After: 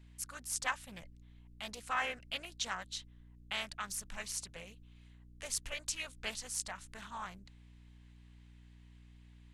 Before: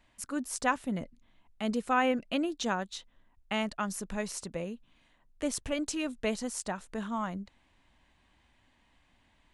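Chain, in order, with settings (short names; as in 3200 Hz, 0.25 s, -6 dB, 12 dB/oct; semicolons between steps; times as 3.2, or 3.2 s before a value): passive tone stack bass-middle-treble 10-0-10; hum 60 Hz, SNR 14 dB; Doppler distortion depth 0.67 ms; gain +1.5 dB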